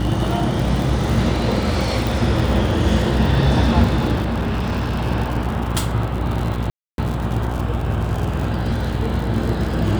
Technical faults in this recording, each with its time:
mains buzz 60 Hz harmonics 15 −24 dBFS
surface crackle 100 per second −24 dBFS
0:02.07: click
0:04.21–0:05.04: clipping −17 dBFS
0:06.70–0:06.98: drop-out 282 ms

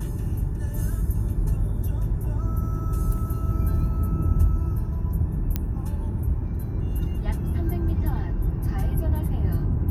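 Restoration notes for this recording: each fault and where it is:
0:05.56: click −11 dBFS

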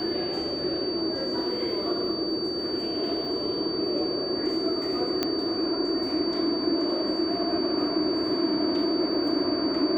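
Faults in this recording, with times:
whistle 4,600 Hz −32 dBFS
0:05.23: click −11 dBFS

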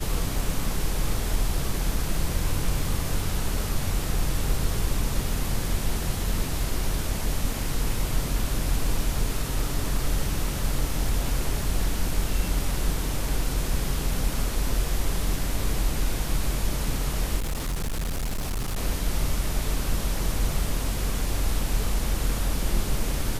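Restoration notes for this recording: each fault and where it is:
0:17.39–0:18.78: clipping −24.5 dBFS

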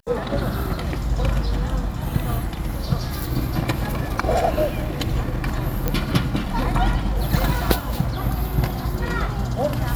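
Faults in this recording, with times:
0:05.88: click −6 dBFS

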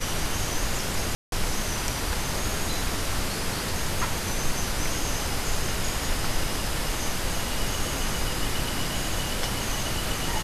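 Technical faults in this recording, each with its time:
0:01.15–0:01.32: drop-out 172 ms

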